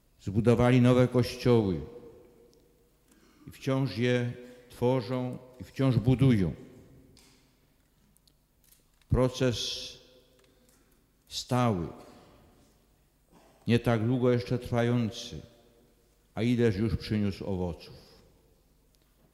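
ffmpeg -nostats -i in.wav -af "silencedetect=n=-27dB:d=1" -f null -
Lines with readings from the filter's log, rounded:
silence_start: 1.77
silence_end: 3.67 | silence_duration: 1.90
silence_start: 6.50
silence_end: 9.13 | silence_duration: 2.62
silence_start: 9.78
silence_end: 11.37 | silence_duration: 1.59
silence_start: 11.85
silence_end: 13.68 | silence_duration: 1.84
silence_start: 15.08
silence_end: 16.37 | silence_duration: 1.29
silence_start: 17.70
silence_end: 19.34 | silence_duration: 1.63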